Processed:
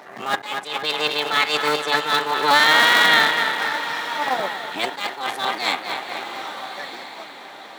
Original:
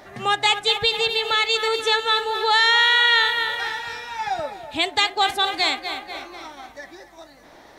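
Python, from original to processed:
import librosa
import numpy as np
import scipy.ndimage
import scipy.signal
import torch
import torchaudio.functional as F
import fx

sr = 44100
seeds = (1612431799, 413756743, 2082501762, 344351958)

y = fx.cycle_switch(x, sr, every=3, mode='muted')
y = scipy.signal.sosfilt(scipy.signal.butter(4, 150.0, 'highpass', fs=sr, output='sos'), y)
y = fx.peak_eq(y, sr, hz=1100.0, db=6.5, octaves=2.2)
y = fx.echo_diffused(y, sr, ms=1275, feedback_pct=40, wet_db=-14.5)
y = fx.attack_slew(y, sr, db_per_s=110.0)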